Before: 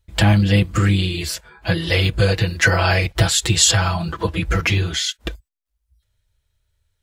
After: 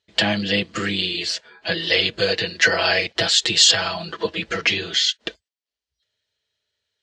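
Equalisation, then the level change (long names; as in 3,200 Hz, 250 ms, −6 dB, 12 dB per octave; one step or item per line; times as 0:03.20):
loudspeaker in its box 210–6,200 Hz, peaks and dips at 230 Hz +7 dB, 430 Hz +9 dB, 630 Hz +6 dB, 1,800 Hz +6 dB, 3,000 Hz +6 dB, 4,300 Hz +5 dB
high-shelf EQ 2,700 Hz +10 dB
−7.0 dB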